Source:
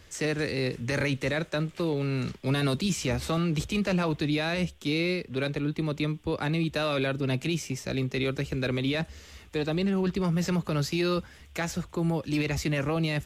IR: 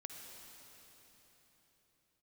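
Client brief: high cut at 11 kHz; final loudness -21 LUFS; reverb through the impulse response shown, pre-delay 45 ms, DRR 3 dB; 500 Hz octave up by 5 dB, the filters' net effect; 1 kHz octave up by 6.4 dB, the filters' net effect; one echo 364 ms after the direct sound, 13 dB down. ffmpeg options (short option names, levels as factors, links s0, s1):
-filter_complex "[0:a]lowpass=11000,equalizer=f=500:t=o:g=4.5,equalizer=f=1000:t=o:g=7,aecho=1:1:364:0.224,asplit=2[s0][s1];[1:a]atrim=start_sample=2205,adelay=45[s2];[s1][s2]afir=irnorm=-1:irlink=0,volume=1.06[s3];[s0][s3]amix=inputs=2:normalize=0,volume=1.5"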